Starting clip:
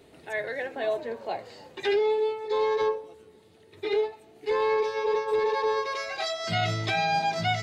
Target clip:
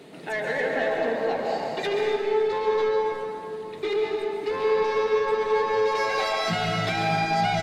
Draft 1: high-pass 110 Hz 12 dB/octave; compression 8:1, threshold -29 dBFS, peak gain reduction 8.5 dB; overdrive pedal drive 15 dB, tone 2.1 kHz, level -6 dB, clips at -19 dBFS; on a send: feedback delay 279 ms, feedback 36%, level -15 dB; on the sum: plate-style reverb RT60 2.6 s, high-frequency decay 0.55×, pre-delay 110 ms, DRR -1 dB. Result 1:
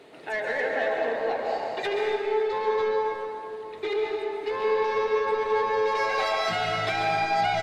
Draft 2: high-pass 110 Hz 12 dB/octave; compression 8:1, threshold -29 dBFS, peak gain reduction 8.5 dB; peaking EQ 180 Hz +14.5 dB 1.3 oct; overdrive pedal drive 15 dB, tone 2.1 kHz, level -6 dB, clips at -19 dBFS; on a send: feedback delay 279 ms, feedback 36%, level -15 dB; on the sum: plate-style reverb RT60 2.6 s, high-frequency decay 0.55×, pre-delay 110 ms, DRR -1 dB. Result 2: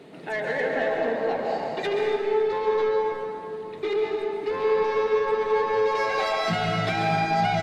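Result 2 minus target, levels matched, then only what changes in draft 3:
8 kHz band -4.0 dB
add after high-pass: treble shelf 4.2 kHz +8.5 dB

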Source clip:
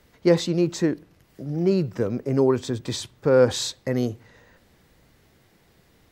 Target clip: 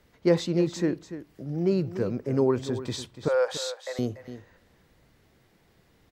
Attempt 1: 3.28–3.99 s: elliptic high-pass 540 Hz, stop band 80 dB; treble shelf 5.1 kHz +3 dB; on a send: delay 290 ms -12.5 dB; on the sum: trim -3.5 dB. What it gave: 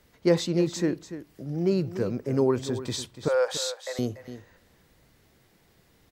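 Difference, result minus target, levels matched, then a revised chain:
8 kHz band +4.5 dB
3.28–3.99 s: elliptic high-pass 540 Hz, stop band 80 dB; treble shelf 5.1 kHz -4 dB; on a send: delay 290 ms -12.5 dB; on the sum: trim -3.5 dB

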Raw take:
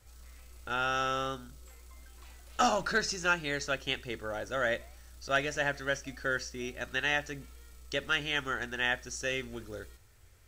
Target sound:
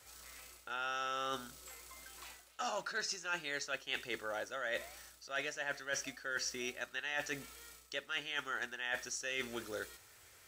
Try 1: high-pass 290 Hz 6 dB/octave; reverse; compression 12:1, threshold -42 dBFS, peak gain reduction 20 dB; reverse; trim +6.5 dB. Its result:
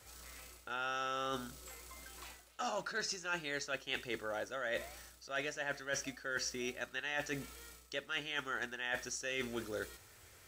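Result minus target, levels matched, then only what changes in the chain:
250 Hz band +4.0 dB
change: high-pass 690 Hz 6 dB/octave

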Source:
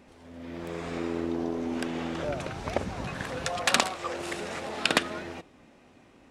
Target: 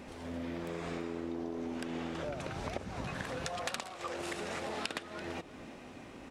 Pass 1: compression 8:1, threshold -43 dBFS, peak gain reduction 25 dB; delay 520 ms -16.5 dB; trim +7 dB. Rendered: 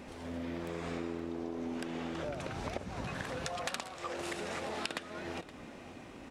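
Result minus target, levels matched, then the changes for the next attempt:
echo 184 ms late
change: delay 336 ms -16.5 dB

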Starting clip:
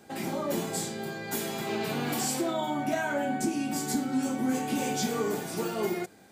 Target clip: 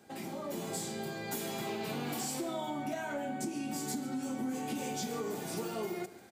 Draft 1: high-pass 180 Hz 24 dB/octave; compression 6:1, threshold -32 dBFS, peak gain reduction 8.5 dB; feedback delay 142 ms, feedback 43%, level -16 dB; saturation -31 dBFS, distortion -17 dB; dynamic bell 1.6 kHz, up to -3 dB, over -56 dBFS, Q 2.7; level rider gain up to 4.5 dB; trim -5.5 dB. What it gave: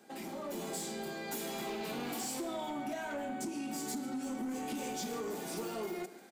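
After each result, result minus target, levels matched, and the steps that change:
saturation: distortion +12 dB; 125 Hz band -5.0 dB
change: saturation -23 dBFS, distortion -29 dB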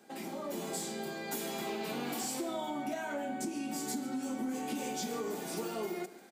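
125 Hz band -5.5 dB
change: high-pass 60 Hz 24 dB/octave

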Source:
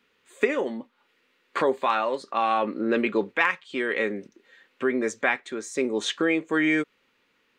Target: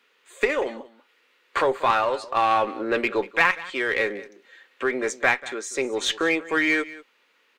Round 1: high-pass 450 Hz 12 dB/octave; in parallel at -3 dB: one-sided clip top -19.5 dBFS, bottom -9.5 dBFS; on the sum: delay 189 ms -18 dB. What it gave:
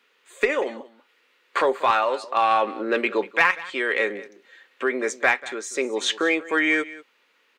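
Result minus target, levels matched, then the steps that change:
one-sided clip: distortion -8 dB
change: one-sided clip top -29 dBFS, bottom -9.5 dBFS

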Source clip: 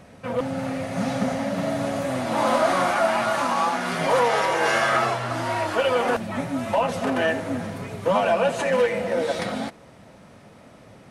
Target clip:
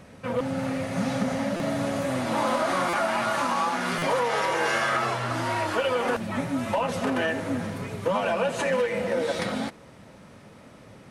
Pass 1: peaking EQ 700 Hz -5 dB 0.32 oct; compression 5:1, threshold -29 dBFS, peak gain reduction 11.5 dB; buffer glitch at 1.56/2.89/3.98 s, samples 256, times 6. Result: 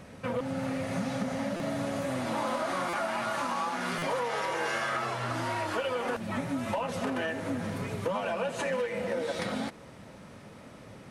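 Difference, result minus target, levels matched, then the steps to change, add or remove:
compression: peak gain reduction +6.5 dB
change: compression 5:1, threshold -21 dBFS, peak gain reduction 5.5 dB

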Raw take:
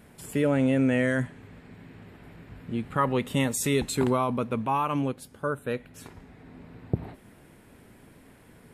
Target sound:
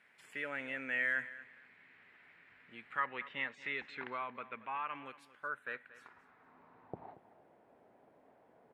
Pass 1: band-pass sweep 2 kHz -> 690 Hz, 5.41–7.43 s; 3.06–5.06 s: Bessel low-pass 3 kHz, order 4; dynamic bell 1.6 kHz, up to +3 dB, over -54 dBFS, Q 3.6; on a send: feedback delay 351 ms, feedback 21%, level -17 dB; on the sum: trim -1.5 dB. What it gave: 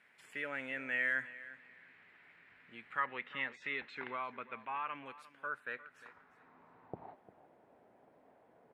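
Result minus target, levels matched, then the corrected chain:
echo 121 ms late
band-pass sweep 2 kHz -> 690 Hz, 5.41–7.43 s; 3.06–5.06 s: Bessel low-pass 3 kHz, order 4; dynamic bell 1.6 kHz, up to +3 dB, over -54 dBFS, Q 3.6; on a send: feedback delay 230 ms, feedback 21%, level -17 dB; on the sum: trim -1.5 dB

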